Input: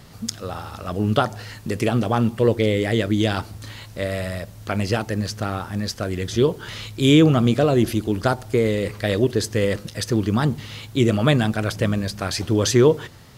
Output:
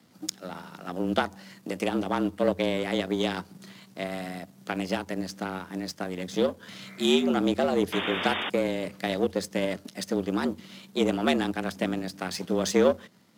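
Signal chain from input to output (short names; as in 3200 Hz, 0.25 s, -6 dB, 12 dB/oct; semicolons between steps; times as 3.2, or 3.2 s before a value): spectral repair 6.83–7.25, 310–2300 Hz before; in parallel at -2.5 dB: compressor, threshold -25 dBFS, peak gain reduction 14 dB; on the sum: power-law curve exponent 1.4; frequency shift +87 Hz; painted sound noise, 7.92–8.5, 210–3700 Hz -26 dBFS; gain -5 dB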